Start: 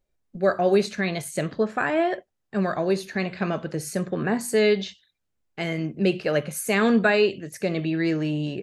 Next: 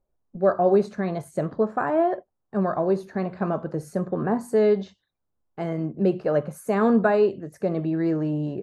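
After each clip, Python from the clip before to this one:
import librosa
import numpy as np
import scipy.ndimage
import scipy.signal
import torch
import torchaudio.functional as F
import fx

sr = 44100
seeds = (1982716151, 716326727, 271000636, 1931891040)

y = fx.high_shelf_res(x, sr, hz=1600.0, db=-13.5, q=1.5)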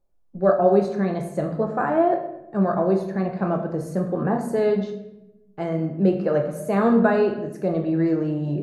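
y = fx.room_shoebox(x, sr, seeds[0], volume_m3=320.0, walls='mixed', distance_m=0.77)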